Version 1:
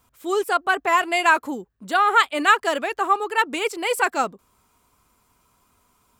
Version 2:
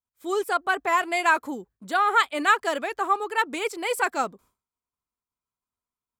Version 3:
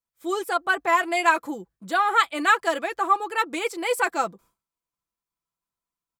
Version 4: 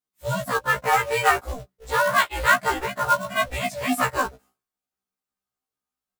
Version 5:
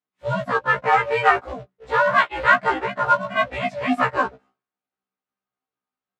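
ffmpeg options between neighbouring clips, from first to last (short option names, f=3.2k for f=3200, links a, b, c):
-af "agate=range=-33dB:threshold=-46dB:ratio=3:detection=peak,bandreject=f=2.8k:w=15,volume=-3.5dB"
-af "aecho=1:1:6:0.49"
-af "acrusher=bits=3:mode=log:mix=0:aa=0.000001,aeval=exprs='val(0)*sin(2*PI*240*n/s)':c=same,afftfilt=real='re*1.73*eq(mod(b,3),0)':imag='im*1.73*eq(mod(b,3),0)':win_size=2048:overlap=0.75,volume=5.5dB"
-af "highpass=120,lowpass=2.6k,volume=3dB"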